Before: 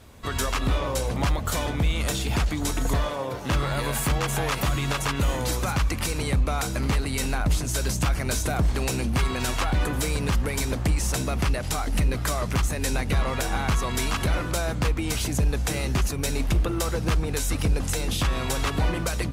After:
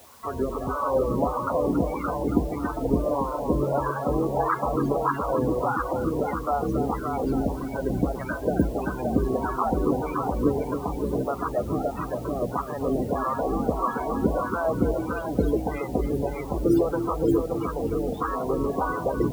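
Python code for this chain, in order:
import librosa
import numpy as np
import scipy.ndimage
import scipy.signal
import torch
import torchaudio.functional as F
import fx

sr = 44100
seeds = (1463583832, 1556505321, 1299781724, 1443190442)

y = fx.low_shelf(x, sr, hz=290.0, db=8.5)
y = y + 10.0 ** (-5.0 / 20.0) * np.pad(y, (int(570 * sr / 1000.0), 0))[:len(y)]
y = fx.wah_lfo(y, sr, hz=1.6, low_hz=340.0, high_hz=1200.0, q=2.1)
y = fx.mod_noise(y, sr, seeds[0], snr_db=10)
y = fx.highpass(y, sr, hz=61.0, slope=6, at=(10.95, 13.27))
y = fx.echo_feedback(y, sr, ms=276, feedback_pct=34, wet_db=-9)
y = fx.spec_topn(y, sr, count=32)
y = fx.quant_dither(y, sr, seeds[1], bits=10, dither='triangular')
y = F.gain(torch.from_numpy(y), 7.0).numpy()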